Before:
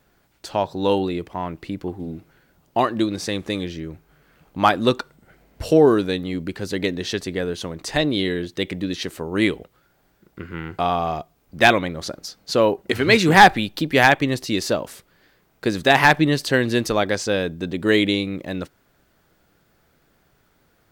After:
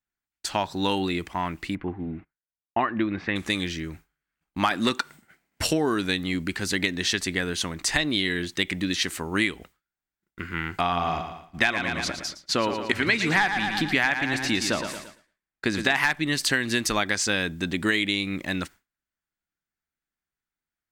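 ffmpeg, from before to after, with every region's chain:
-filter_complex "[0:a]asettb=1/sr,asplit=3[s0][s1][s2];[s0]atrim=end=1.754[s3];[s1]atrim=start=1.75:end=3.36,asetpts=PTS-STARTPTS,afade=t=in:d=0.004:c=qsin,afade=t=out:st=1.606:d=0.004:c=qsin,agate=range=0.141:threshold=0.00355:ratio=16:release=100:detection=peak,lowpass=f=2400:w=0.5412,lowpass=f=2400:w=1.3066[s4];[s2]atrim=start=3.356[s5];[s3][s4]acrossfade=d=0.004:c1=hsin:c2=qsin[s6];[s6][s5]acrossfade=d=0.004:c1=qsin:c2=hsin,asettb=1/sr,asplit=3[s7][s8][s9];[s7]atrim=end=4.714[s10];[s8]atrim=start=4.71:end=5.67,asetpts=PTS-STARTPTS,afade=t=in:d=0.004:c=qsin,afade=t=out:st=0.956:d=0.004:c=qsin,highpass=120,acontrast=40[s11];[s9]atrim=start=5.666[s12];[s10][s11]acrossfade=d=0.004:c1=hsin:c2=qsin[s13];[s13][s12]acrossfade=d=0.004:c1=qsin:c2=hsin,asettb=1/sr,asplit=3[s14][s15][s16];[s14]atrim=end=10.814[s17];[s15]atrim=start=10.81:end=15.96,asetpts=PTS-STARTPTS,afade=t=in:d=0.004:c=qsin,afade=t=out:st=5.146:d=0.004:c=qsin,lowpass=f=3700:p=1,aecho=1:1:114|228|342|456|570:0.335|0.161|0.0772|0.037|0.0178,atrim=end_sample=227115[s18];[s16]atrim=start=15.956[s19];[s17][s18]acrossfade=d=0.004:c1=hsin:c2=qsin[s20];[s20][s19]acrossfade=d=0.004:c1=qsin:c2=hsin,agate=range=0.0224:threshold=0.0141:ratio=3:detection=peak,equalizer=f=125:t=o:w=1:g=-7,equalizer=f=500:t=o:w=1:g=-11,equalizer=f=2000:t=o:w=1:g=5,equalizer=f=8000:t=o:w=1:g=6,acompressor=threshold=0.0708:ratio=6,volume=1.41"

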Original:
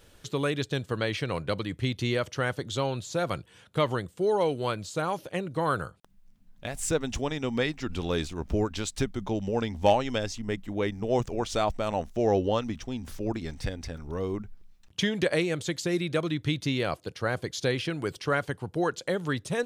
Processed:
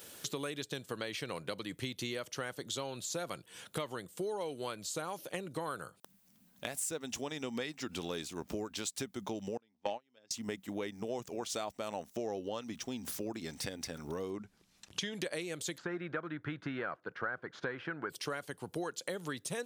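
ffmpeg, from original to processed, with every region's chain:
-filter_complex "[0:a]asettb=1/sr,asplit=3[s0][s1][s2];[s0]atrim=end=9.574[s3];[s1]atrim=start=9.57:end=10.31,asetpts=PTS-STARTPTS,afade=t=in:d=0.004:c=qsin,afade=t=out:st=0.736:d=0.004:c=qsin,agate=range=0.0224:threshold=0.0708:ratio=16:release=100:detection=peak,highpass=130,lowpass=4400[s4];[s2]atrim=start=10.306[s5];[s3][s4]acrossfade=d=0.004:c1=hsin:c2=qsin[s6];[s6][s5]acrossfade=d=0.004:c1=qsin:c2=hsin,asettb=1/sr,asplit=3[s7][s8][s9];[s7]atrim=end=14.304[s10];[s8]atrim=start=14.3:end=15.13,asetpts=PTS-STARTPTS,afade=t=in:d=0.004:c=qsin,afade=t=out:st=0.826:d=0.004:c=qsin,lowpass=8400,asubboost=boost=6:cutoff=120,acompressor=mode=upward:threshold=0.00891:ratio=2.5:attack=3.2:release=140:knee=2.83:detection=peak[s11];[s9]atrim=start=15.126[s12];[s10][s11]acrossfade=d=0.004:c1=hsin:c2=qsin[s13];[s13][s12]acrossfade=d=0.004:c1=qsin:c2=hsin,asettb=1/sr,asplit=3[s14][s15][s16];[s14]atrim=end=15.784[s17];[s15]atrim=start=15.78:end=18.1,asetpts=PTS-STARTPTS,afade=t=in:d=0.004:c=qsin,afade=t=out:st=2.316:d=0.004:c=qsin,aeval=exprs='if(lt(val(0),0),0.708*val(0),val(0))':c=same,lowpass=f=1500:t=q:w=4.3[s18];[s16]atrim=start=18.096[s19];[s17][s18]acrossfade=d=0.004:c1=hsin:c2=qsin[s20];[s20][s19]acrossfade=d=0.004:c1=qsin:c2=hsin,highpass=180,aemphasis=mode=production:type=50kf,acompressor=threshold=0.01:ratio=5,volume=1.41"

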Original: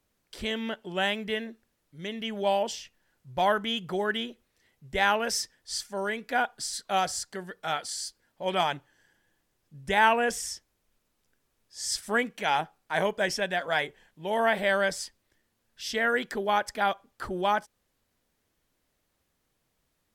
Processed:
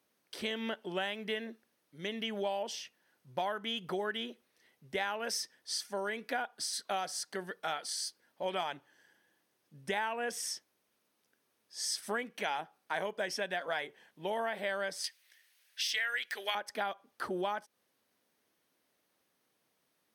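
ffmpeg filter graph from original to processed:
-filter_complex "[0:a]asettb=1/sr,asplit=3[s0][s1][s2];[s0]atrim=end=15.044[s3];[s1]atrim=start=15.04:end=16.55,asetpts=PTS-STARTPTS,afade=t=in:d=0.004:c=qsin,afade=t=out:st=1.506:d=0.004:c=qsin,highpass=750,deesser=0.8,highshelf=f=1500:t=q:w=1.5:g=9.5[s4];[s2]atrim=start=16.546[s5];[s3][s4]acrossfade=d=0.004:c1=hsin:c2=qsin[s6];[s6][s5]acrossfade=d=0.004:c1=qsin:c2=hsin,highpass=220,bandreject=f=7300:w=6,acompressor=threshold=0.0251:ratio=6"

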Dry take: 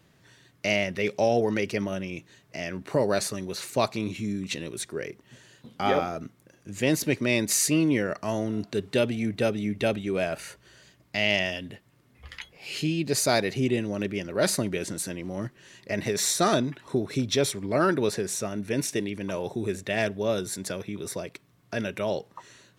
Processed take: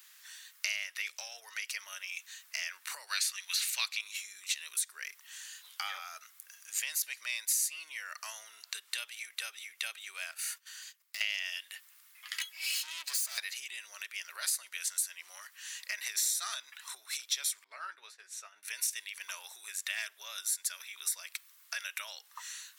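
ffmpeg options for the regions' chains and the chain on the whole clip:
-filter_complex "[0:a]asettb=1/sr,asplit=3[s0][s1][s2];[s0]atrim=end=3.074[s3];[s1]atrim=start=3.07:end=4.01,asetpts=PTS-STARTPTS,afade=t=in:d=0.004:c=qsin,afade=t=out:st=0.936:d=0.004:c=qsin,highpass=820,equalizer=f=2800:t=o:w=1.8:g=11.5[s4];[s2]atrim=start=4.006[s5];[s3][s4]acrossfade=d=0.004:c1=hsin:c2=qsin[s6];[s6][s5]acrossfade=d=0.004:c1=qsin:c2=hsin,asettb=1/sr,asplit=3[s7][s8][s9];[s7]atrim=end=10.314[s10];[s8]atrim=start=10.31:end=11.21,asetpts=PTS-STARTPTS,afade=t=in:d=0.004:c=qsin,afade=t=out:st=0.896:d=0.004:c=qsin,acompressor=threshold=0.00794:ratio=3:attack=3.2:release=140:knee=1:detection=peak,agate=range=0.178:threshold=0.00141:ratio=16:release=100:detection=peak,asoftclip=type=hard:threshold=0.0112[s11];[s9]atrim=start=11.206[s12];[s10][s11]acrossfade=d=0.004:c1=hsin:c2=qsin[s13];[s13][s12]acrossfade=d=0.004:c1=qsin:c2=hsin,asettb=1/sr,asplit=3[s14][s15][s16];[s14]atrim=end=12.344[s17];[s15]atrim=start=12.34:end=13.38,asetpts=PTS-STARTPTS,afade=t=in:d=0.004:c=qsin,afade=t=out:st=1.036:d=0.004:c=qsin,aecho=1:1:3.1:0.91,atrim=end_sample=45864,acompressor=threshold=0.0447:ratio=2:attack=3.2:release=140:knee=1:detection=peak,aeval=exprs='(tanh(39.8*val(0)+0.35)-tanh(0.35))/39.8':c=same[s18];[s16]atrim=start=13.376[s19];[s17][s18]acrossfade=d=0.004:c1=hsin:c2=qsin[s20];[s20][s19]acrossfade=d=0.004:c1=qsin:c2=hsin,asettb=1/sr,asplit=3[s21][s22][s23];[s21]atrim=end=17.644[s24];[s22]atrim=start=17.64:end=18.63,asetpts=PTS-STARTPTS,afade=t=in:d=0.004:c=qsin,afade=t=out:st=0.986:d=0.004:c=qsin,agate=range=0.0224:threshold=0.0562:ratio=3:release=100:detection=peak,aemphasis=mode=reproduction:type=riaa,asplit=2[s25][s26];[s26]adelay=16,volume=0.355[s27];[s25][s27]amix=inputs=2:normalize=0,atrim=end_sample=43659[s28];[s23]atrim=start=18.626[s29];[s24][s28]acrossfade=d=0.004:c1=hsin:c2=qsin[s30];[s30][s29]acrossfade=d=0.004:c1=qsin:c2=hsin,aemphasis=mode=production:type=75kf,acompressor=threshold=0.0224:ratio=5,highpass=f=1200:w=0.5412,highpass=f=1200:w=1.3066,volume=1.26"

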